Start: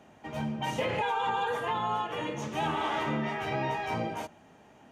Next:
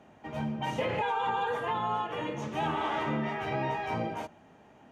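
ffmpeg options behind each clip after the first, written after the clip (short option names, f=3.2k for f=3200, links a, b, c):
-af "highshelf=f=4.2k:g=-8"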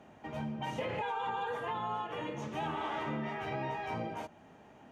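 -af "acompressor=threshold=-43dB:ratio=1.5"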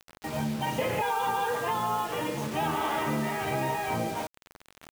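-af "acrusher=bits=7:mix=0:aa=0.000001,volume=7.5dB"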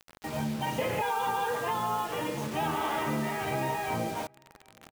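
-filter_complex "[0:a]asplit=2[a][b];[b]adelay=758,volume=-29dB,highshelf=f=4k:g=-17.1[c];[a][c]amix=inputs=2:normalize=0,volume=-1.5dB"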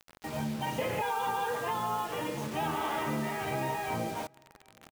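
-filter_complex "[0:a]asplit=2[a][b];[b]adelay=186.6,volume=-30dB,highshelf=f=4k:g=-4.2[c];[a][c]amix=inputs=2:normalize=0,volume=-2dB"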